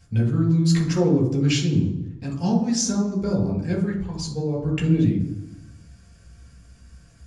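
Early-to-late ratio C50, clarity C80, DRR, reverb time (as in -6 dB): 6.5 dB, 10.5 dB, -2.0 dB, 0.90 s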